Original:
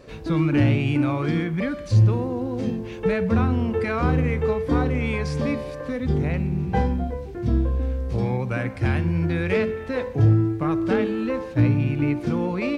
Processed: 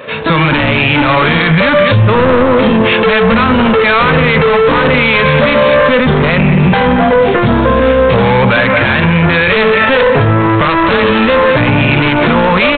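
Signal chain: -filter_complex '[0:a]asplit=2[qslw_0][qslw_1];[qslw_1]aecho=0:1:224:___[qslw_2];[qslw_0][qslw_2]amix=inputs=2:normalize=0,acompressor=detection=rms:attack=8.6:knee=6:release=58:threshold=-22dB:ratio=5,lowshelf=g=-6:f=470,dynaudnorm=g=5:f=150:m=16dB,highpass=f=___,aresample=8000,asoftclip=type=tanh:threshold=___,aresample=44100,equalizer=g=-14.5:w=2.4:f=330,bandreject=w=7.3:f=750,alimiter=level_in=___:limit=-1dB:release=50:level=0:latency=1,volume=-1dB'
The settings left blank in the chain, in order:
0.15, 220, -20dB, 26.5dB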